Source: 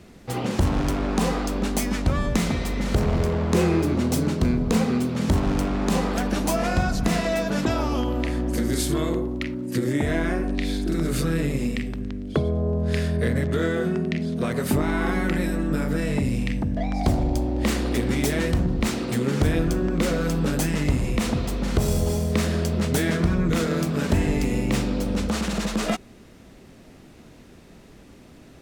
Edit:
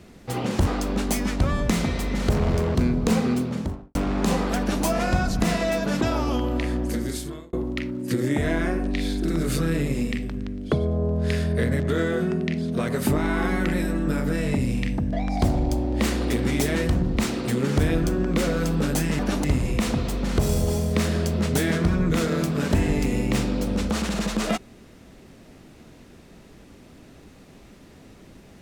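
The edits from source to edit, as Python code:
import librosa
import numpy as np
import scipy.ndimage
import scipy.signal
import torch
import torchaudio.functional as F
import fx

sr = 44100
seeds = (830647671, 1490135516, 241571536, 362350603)

y = fx.studio_fade_out(x, sr, start_s=4.97, length_s=0.62)
y = fx.edit(y, sr, fx.cut(start_s=0.67, length_s=0.66),
    fx.cut(start_s=3.41, length_s=0.98),
    fx.duplicate(start_s=6.23, length_s=0.25, to_s=20.83),
    fx.fade_out_span(start_s=8.41, length_s=0.76), tone=tone)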